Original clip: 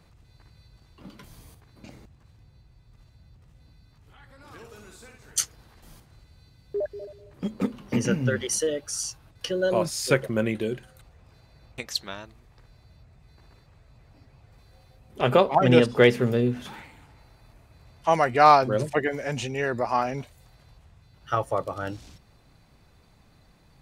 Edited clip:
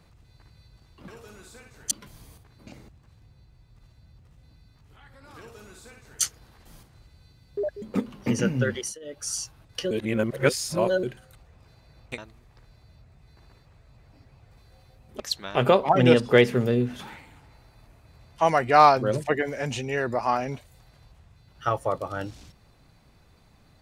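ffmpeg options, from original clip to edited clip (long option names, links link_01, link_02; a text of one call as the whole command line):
ffmpeg -i in.wav -filter_complex "[0:a]asplit=11[link_01][link_02][link_03][link_04][link_05][link_06][link_07][link_08][link_09][link_10][link_11];[link_01]atrim=end=1.082[link_12];[link_02]atrim=start=4.558:end=5.392[link_13];[link_03]atrim=start=1.078:end=6.992[link_14];[link_04]atrim=start=7.478:end=8.65,asetpts=PTS-STARTPTS,afade=type=out:start_time=0.912:duration=0.26:silence=0.0668344[link_15];[link_05]atrim=start=8.65:end=8.66,asetpts=PTS-STARTPTS,volume=-23.5dB[link_16];[link_06]atrim=start=8.66:end=9.572,asetpts=PTS-STARTPTS,afade=type=in:duration=0.26:silence=0.0668344[link_17];[link_07]atrim=start=9.568:end=10.692,asetpts=PTS-STARTPTS,areverse[link_18];[link_08]atrim=start=10.688:end=11.842[link_19];[link_09]atrim=start=12.188:end=15.212[link_20];[link_10]atrim=start=11.838:end=12.192[link_21];[link_11]atrim=start=15.208[link_22];[link_12][link_13]acrossfade=duration=0.004:curve1=hsin:curve2=hsin[link_23];[link_23][link_14]acrossfade=duration=0.004:curve1=hsin:curve2=hsin[link_24];[link_15][link_16][link_17]concat=n=3:v=0:a=1[link_25];[link_24][link_25]acrossfade=duration=0.004:curve1=hsin:curve2=hsin[link_26];[link_26][link_18]acrossfade=duration=0.004:curve1=hsin:curve2=hsin[link_27];[link_27][link_19]acrossfade=duration=0.004:curve1=hsin:curve2=hsin[link_28];[link_28][link_20]acrossfade=duration=0.004:curve1=hsin:curve2=hsin[link_29];[link_29][link_21]acrossfade=duration=0.004:curve1=hsin:curve2=hsin[link_30];[link_30][link_22]acrossfade=duration=0.004:curve1=hsin:curve2=hsin" out.wav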